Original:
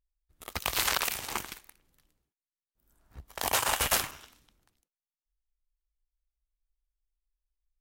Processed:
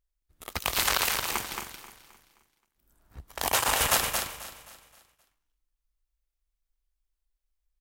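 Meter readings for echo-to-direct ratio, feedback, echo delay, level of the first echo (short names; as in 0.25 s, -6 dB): -4.5 dB, no steady repeat, 0.223 s, -5.5 dB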